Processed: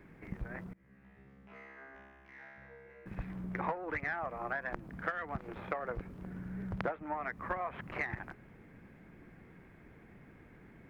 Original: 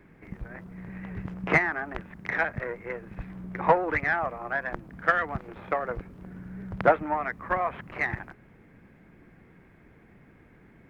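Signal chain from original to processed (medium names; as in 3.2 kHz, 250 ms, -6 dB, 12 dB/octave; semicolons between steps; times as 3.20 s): compression 12:1, threshold -31 dBFS, peak gain reduction 17.5 dB; 0.73–3.06 s: feedback comb 67 Hz, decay 1.8 s, harmonics all, mix 100%; trim -1.5 dB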